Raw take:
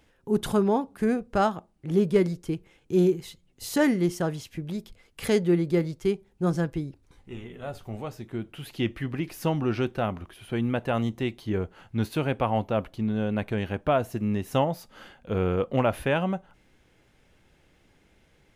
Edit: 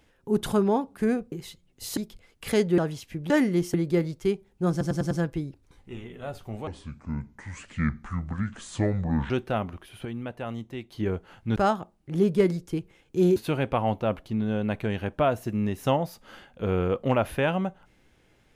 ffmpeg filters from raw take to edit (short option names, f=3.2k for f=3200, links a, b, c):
-filter_complex "[0:a]asplit=16[a][b][c][d][e][f][g][h][i][j][k][l][m][n][o][p];[a]atrim=end=1.322[q];[b]atrim=start=3.118:end=3.772[r];[c]atrim=start=4.728:end=5.542[s];[d]atrim=start=4.208:end=4.732[t];[e]atrim=start=3.768:end=4.212[u];[f]atrim=start=5.538:end=6.612[v];[g]atrim=start=6.508:end=6.612[w];[h]atrim=start=6.508:end=6.612[x];[i]atrim=start=6.508:end=6.612[y];[j]atrim=start=6.508:end=8.074[z];[k]atrim=start=8.07:end=9.78,asetpts=PTS-STARTPTS,asetrate=28665,aresample=44100[aa];[l]atrim=start=9.776:end=10.532[ab];[m]atrim=start=10.528:end=11.402,asetpts=PTS-STARTPTS,volume=-8dB[ac];[n]atrim=start=11.398:end=12.042[ad];[o]atrim=start=1.318:end=3.122[ae];[p]atrim=start=12.038[af];[q][r]acrossfade=d=0.004:c1=hsin:c2=hsin[ag];[ag][s]acrossfade=d=0.004:c1=hsin:c2=hsin[ah];[ah][t]acrossfade=d=0.004:c1=hsin:c2=hsin[ai];[ai][u]acrossfade=d=0.004:c1=hsin:c2=hsin[aj];[aj][v]acrossfade=d=0.004:c1=hsin:c2=hsin[ak];[ak][w]acrossfade=d=0.004:c1=hsin:c2=hsin[al];[al][x]acrossfade=d=0.004:c1=hsin:c2=hsin[am];[am][y]acrossfade=d=0.004:c1=hsin:c2=hsin[an];[an][z]acrossfade=d=0.004:c1=hsin:c2=hsin[ao];[ao][aa]acrossfade=d=0.004:c1=hsin:c2=hsin[ap];[ap][ab]acrossfade=d=0.004:c1=hsin:c2=hsin[aq];[aq][ac]acrossfade=d=0.004:c1=hsin:c2=hsin[ar];[ar][ad]acrossfade=d=0.004:c1=hsin:c2=hsin[as];[as][ae]acrossfade=d=0.004:c1=hsin:c2=hsin[at];[at][af]acrossfade=d=0.004:c1=hsin:c2=hsin"